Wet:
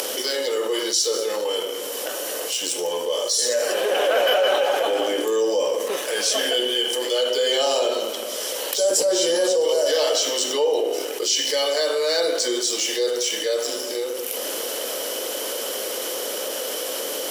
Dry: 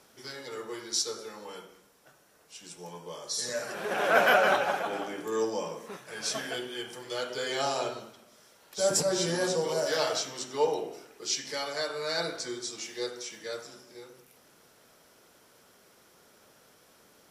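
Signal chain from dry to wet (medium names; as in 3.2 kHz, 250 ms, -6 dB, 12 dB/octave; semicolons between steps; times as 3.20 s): waveshaping leveller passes 1; ladder high-pass 240 Hz, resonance 45%; small resonant body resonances 520/3000 Hz, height 15 dB, ringing for 25 ms; upward compressor, threshold -42 dBFS; tilt EQ +3 dB/octave; band-stop 1.4 kHz, Q 18; level flattener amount 70%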